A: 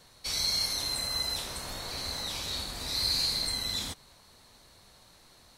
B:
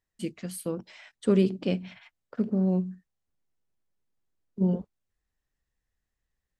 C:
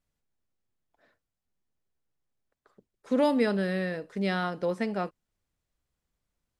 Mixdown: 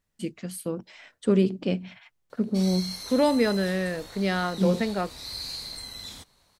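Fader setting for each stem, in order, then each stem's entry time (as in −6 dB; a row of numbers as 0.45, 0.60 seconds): −7.0, +1.0, +2.5 decibels; 2.30, 0.00, 0.00 seconds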